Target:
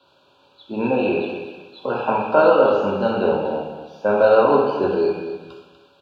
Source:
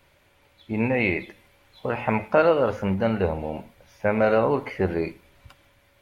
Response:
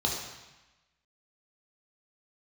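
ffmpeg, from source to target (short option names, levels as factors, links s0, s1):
-filter_complex "[0:a]asuperstop=centerf=2000:order=12:qfactor=2.7,acrossover=split=180 3900:gain=0.0891 1 0.0891[s0][s1][s2];[s0][s1][s2]amix=inputs=3:normalize=0,aecho=1:1:244|488|732:0.299|0.0687|0.0158,asettb=1/sr,asplit=3[s3][s4][s5];[s3]atrim=end=1.004[s6];[s4]atrim=start=1:end=3.02,asetpts=PTS-STARTPTS,afade=t=in:d=0.004:c=qsin,afade=t=out:st=2.016:d=0.004:c=qsin,acrossover=split=2700[s7][s8];[s8]acompressor=threshold=0.00562:ratio=4:attack=1:release=60[s9];[s7][s9]amix=inputs=2:normalize=0[s10];[s5]atrim=start=3.016[s11];[s6][s10]acrossfade=d=0.004:c1=hsin:c2=qsin[s12];[s12][s11]acrossfade=d=0.004:c1=qsin:c2=hsin,highshelf=f=3100:g=11.5,bandreject=f=85.14:t=h:w=4,bandreject=f=170.28:t=h:w=4,bandreject=f=255.42:t=h:w=4,bandreject=f=340.56:t=h:w=4,bandreject=f=425.7:t=h:w=4,bandreject=f=510.84:t=h:w=4,bandreject=f=595.98:t=h:w=4,bandreject=f=681.12:t=h:w=4,bandreject=f=766.26:t=h:w=4,bandreject=f=851.4:t=h:w=4,bandreject=f=936.54:t=h:w=4,bandreject=f=1021.68:t=h:w=4,bandreject=f=1106.82:t=h:w=4,bandreject=f=1191.96:t=h:w=4,bandreject=f=1277.1:t=h:w=4,bandreject=f=1362.24:t=h:w=4,bandreject=f=1447.38:t=h:w=4,bandreject=f=1532.52:t=h:w=4,bandreject=f=1617.66:t=h:w=4,bandreject=f=1702.8:t=h:w=4,bandreject=f=1787.94:t=h:w=4,bandreject=f=1873.08:t=h:w=4,bandreject=f=1958.22:t=h:w=4,bandreject=f=2043.36:t=h:w=4,bandreject=f=2128.5:t=h:w=4,bandreject=f=2213.64:t=h:w=4,bandreject=f=2298.78:t=h:w=4,bandreject=f=2383.92:t=h:w=4,bandreject=f=2469.06:t=h:w=4,bandreject=f=2554.2:t=h:w=4,bandreject=f=2639.34:t=h:w=4,bandreject=f=2724.48:t=h:w=4,bandreject=f=2809.62:t=h:w=4,bandreject=f=2894.76:t=h:w=4,bandreject=f=2979.9:t=h:w=4,bandreject=f=3065.04:t=h:w=4,bandreject=f=3150.18:t=h:w=4[s13];[1:a]atrim=start_sample=2205,asetrate=48510,aresample=44100[s14];[s13][s14]afir=irnorm=-1:irlink=0,volume=0.596"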